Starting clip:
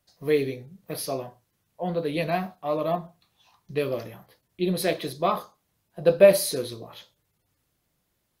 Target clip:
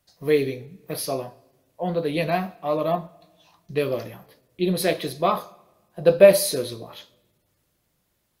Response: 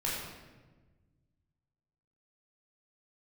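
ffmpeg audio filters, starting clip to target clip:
-filter_complex "[0:a]asplit=2[s0][s1];[1:a]atrim=start_sample=2205,lowshelf=f=160:g=-11.5,highshelf=f=3800:g=9.5[s2];[s1][s2]afir=irnorm=-1:irlink=0,volume=0.0447[s3];[s0][s3]amix=inputs=2:normalize=0,volume=1.33"

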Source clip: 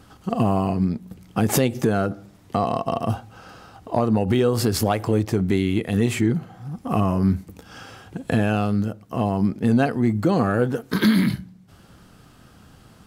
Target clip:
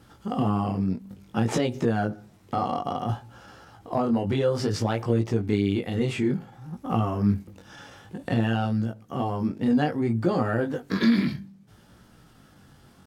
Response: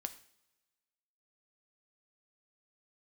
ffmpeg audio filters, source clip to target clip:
-filter_complex "[0:a]acrossover=split=6900[s0][s1];[s1]acompressor=threshold=0.00112:ratio=4:attack=1:release=60[s2];[s0][s2]amix=inputs=2:normalize=0,flanger=delay=18:depth=4.9:speed=0.58,asetrate=46722,aresample=44100,atempo=0.943874,volume=0.841"

